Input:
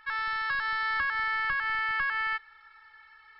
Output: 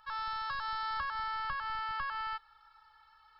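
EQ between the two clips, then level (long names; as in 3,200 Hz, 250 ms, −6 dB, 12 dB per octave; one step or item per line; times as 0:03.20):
phaser with its sweep stopped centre 830 Hz, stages 4
0.0 dB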